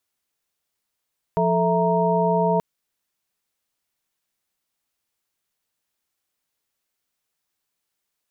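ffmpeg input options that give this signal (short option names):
-f lavfi -i "aevalsrc='0.075*(sin(2*PI*174.61*t)+sin(2*PI*440*t)+sin(2*PI*659.26*t)+sin(2*PI*932.33*t))':d=1.23:s=44100"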